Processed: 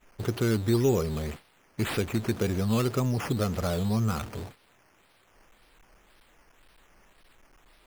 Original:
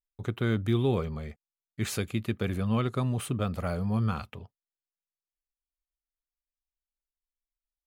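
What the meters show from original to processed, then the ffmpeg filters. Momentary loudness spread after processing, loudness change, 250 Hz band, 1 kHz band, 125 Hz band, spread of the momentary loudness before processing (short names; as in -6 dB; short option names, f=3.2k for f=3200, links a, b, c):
14 LU, +2.0 dB, +2.5 dB, +1.5 dB, +1.0 dB, 13 LU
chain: -filter_complex "[0:a]aeval=exprs='val(0)+0.5*0.0158*sgn(val(0))':c=same,agate=range=-33dB:threshold=-34dB:ratio=3:detection=peak,asplit=2[a][b];[b]acompressor=threshold=-38dB:ratio=6,volume=1dB[c];[a][c]amix=inputs=2:normalize=0,equalizer=f=390:w=1.3:g=4.5,acrusher=samples=9:mix=1:aa=0.000001:lfo=1:lforange=5.4:lforate=1.9,volume=-2.5dB"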